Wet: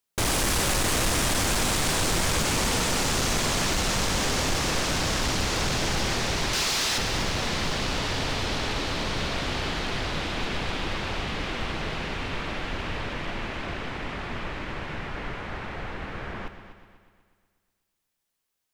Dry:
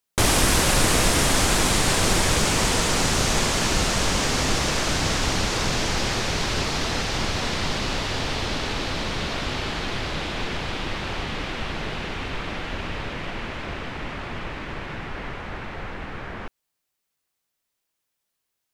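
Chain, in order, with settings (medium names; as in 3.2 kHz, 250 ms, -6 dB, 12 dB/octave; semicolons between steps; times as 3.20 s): 6.53–6.98 s: tilt EQ +3 dB/octave; hard clipper -20.5 dBFS, distortion -10 dB; multi-head delay 123 ms, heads first and second, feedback 49%, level -14 dB; trim -1.5 dB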